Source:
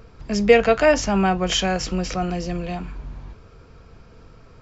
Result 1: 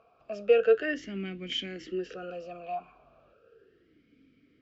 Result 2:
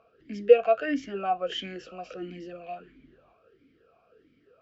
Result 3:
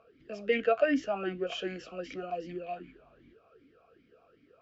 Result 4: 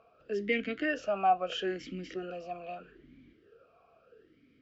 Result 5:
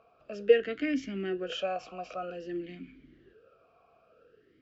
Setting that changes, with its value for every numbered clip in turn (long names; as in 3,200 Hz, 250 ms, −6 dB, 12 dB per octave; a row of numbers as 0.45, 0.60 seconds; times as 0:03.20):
formant filter swept between two vowels, speed: 0.35, 1.5, 2.6, 0.78, 0.52 Hertz